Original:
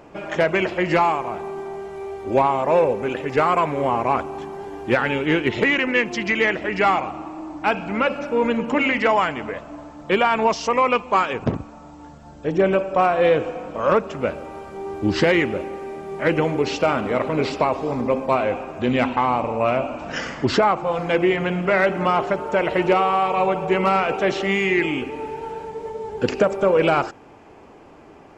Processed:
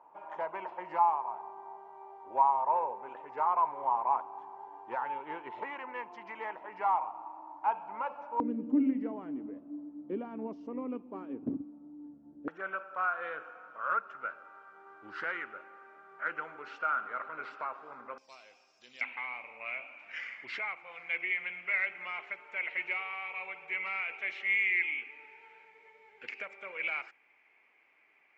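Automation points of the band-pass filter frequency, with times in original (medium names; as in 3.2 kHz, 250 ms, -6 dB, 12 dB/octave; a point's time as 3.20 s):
band-pass filter, Q 9.6
930 Hz
from 8.40 s 280 Hz
from 12.48 s 1.4 kHz
from 18.18 s 5.3 kHz
from 19.01 s 2.2 kHz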